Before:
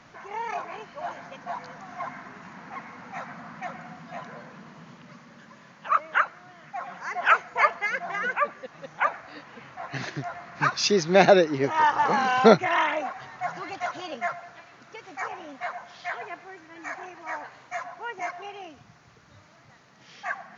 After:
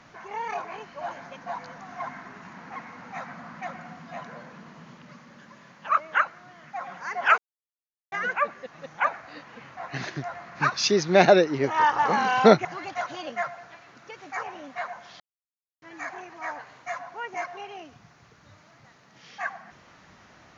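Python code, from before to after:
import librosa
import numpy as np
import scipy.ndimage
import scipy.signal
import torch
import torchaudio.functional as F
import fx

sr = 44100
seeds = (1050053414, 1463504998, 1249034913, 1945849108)

y = fx.edit(x, sr, fx.silence(start_s=7.38, length_s=0.74),
    fx.cut(start_s=12.65, length_s=0.85),
    fx.silence(start_s=16.05, length_s=0.62), tone=tone)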